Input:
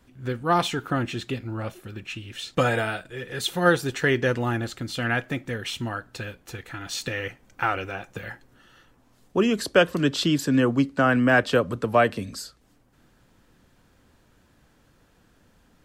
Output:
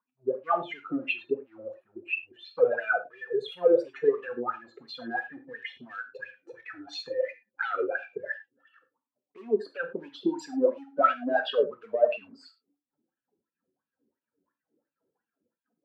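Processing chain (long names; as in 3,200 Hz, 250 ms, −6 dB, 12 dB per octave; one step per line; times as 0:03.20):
expanding power law on the bin magnitudes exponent 2.6
high-pass filter 200 Hz 12 dB per octave
in parallel at +3 dB: brickwall limiter −17.5 dBFS, peak gain reduction 9 dB
on the sum: leveller curve on the samples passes 1
LFO wah 2.9 Hz 370–2,800 Hz, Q 7.7
reverb whose tail is shaped and stops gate 130 ms falling, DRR 6.5 dB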